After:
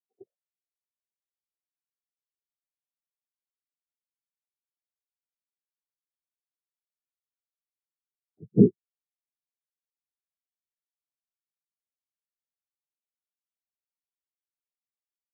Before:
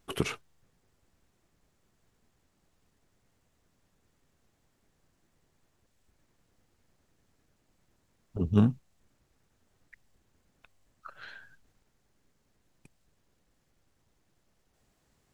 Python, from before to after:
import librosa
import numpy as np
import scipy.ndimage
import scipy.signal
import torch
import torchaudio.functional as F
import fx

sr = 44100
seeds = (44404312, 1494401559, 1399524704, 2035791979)

y = fx.peak_eq(x, sr, hz=610.0, db=13.0, octaves=0.46)
y = fx.noise_vocoder(y, sr, seeds[0], bands=6)
y = scipy.signal.sosfilt(scipy.signal.butter(6, 810.0, 'lowpass', fs=sr, output='sos'), y)
y = fx.low_shelf(y, sr, hz=270.0, db=-9.0)
y = fx.spectral_expand(y, sr, expansion=4.0)
y = y * 10.0 ** (7.5 / 20.0)